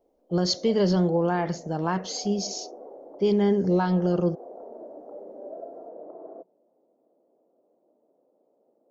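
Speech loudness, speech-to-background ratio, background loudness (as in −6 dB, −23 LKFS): −25.0 LKFS, 18.5 dB, −43.5 LKFS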